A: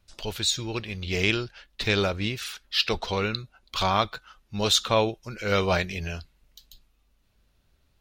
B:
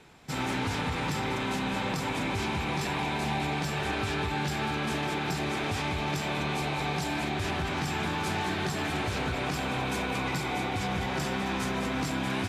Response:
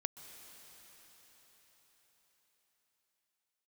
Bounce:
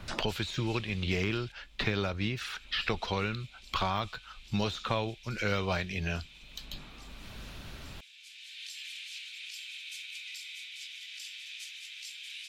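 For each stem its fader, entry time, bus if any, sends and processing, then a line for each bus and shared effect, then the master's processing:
−3.5 dB, 0.00 s, no send, de-essing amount 75%; parametric band 480 Hz −4 dB 1.3 octaves; multiband upward and downward compressor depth 100%
−2.0 dB, 0.00 s, muted 0:01.52–0:02.49, send −11.5 dB, Butterworth high-pass 2,600 Hz 36 dB per octave; automatic ducking −23 dB, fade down 1.95 s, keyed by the first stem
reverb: on, RT60 5.3 s, pre-delay 118 ms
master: high-shelf EQ 6,200 Hz −9.5 dB

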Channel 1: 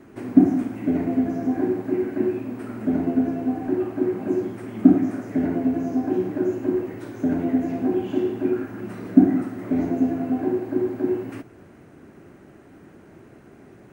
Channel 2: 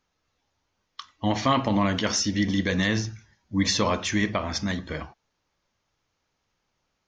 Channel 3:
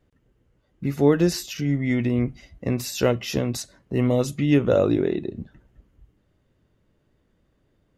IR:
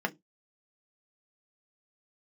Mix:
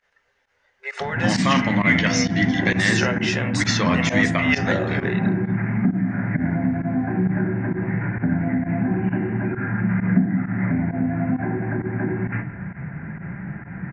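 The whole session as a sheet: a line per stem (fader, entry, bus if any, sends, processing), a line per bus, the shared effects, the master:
+2.5 dB, 1.00 s, send −3.5 dB, elliptic low-pass filter 2,400 Hz, stop band 40 dB; low shelf with overshoot 200 Hz +13 dB, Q 1.5; downward compressor 8 to 1, threshold −27 dBFS, peak gain reduction 19.5 dB
−1.0 dB, 0.00 s, no send, no processing
+1.0 dB, 0.00 s, send −9.5 dB, brick-wall band-pass 390–9,800 Hz; high-shelf EQ 7,700 Hz −3.5 dB; downward compressor, threshold −24 dBFS, peak gain reduction 9 dB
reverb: on, RT60 0.15 s, pre-delay 3 ms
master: parametric band 1,900 Hz +10.5 dB 1 octave; hum removal 95.25 Hz, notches 34; fake sidechain pumping 132 BPM, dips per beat 1, −18 dB, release 62 ms

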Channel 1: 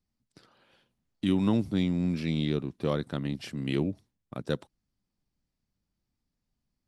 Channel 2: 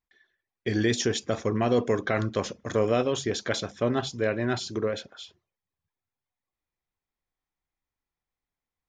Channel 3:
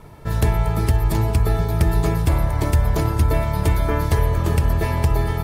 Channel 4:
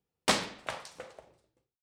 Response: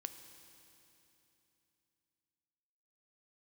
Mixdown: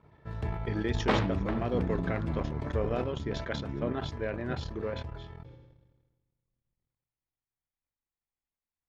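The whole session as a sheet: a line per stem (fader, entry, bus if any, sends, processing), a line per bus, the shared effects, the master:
−17.0 dB, 0.00 s, send −8 dB, low-pass filter 1,400 Hz; low-shelf EQ 250 Hz +11 dB
−9.0 dB, 0.00 s, send −23.5 dB, no processing
0:02.96 −17 dB → 0:03.27 −24 dB, 0.00 s, send −18 dB, high-pass filter 53 Hz 12 dB per octave
0.0 dB, 0.80 s, no send, low-pass filter 1,600 Hz 6 dB per octave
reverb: on, RT60 3.1 s, pre-delay 3 ms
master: low-pass filter 3,100 Hz 12 dB per octave; transient designer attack +1 dB, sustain −12 dB; level that may fall only so fast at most 42 dB per second

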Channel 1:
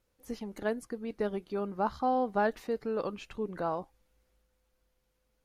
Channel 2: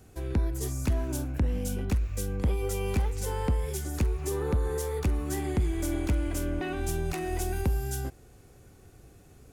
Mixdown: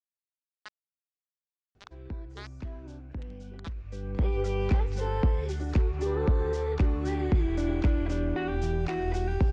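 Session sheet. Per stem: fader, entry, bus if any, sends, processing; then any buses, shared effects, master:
−2.0 dB, 0.00 s, no send, downward compressor 10 to 1, threshold −30 dBFS, peak gain reduction 8 dB; Butterworth high-pass 1,100 Hz 36 dB per octave; bit reduction 6 bits
+2.5 dB, 1.75 s, no send, high-shelf EQ 3,900 Hz −8.5 dB; automatic ducking −14 dB, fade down 0.40 s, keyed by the first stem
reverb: not used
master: low-pass filter 5,500 Hz 24 dB per octave

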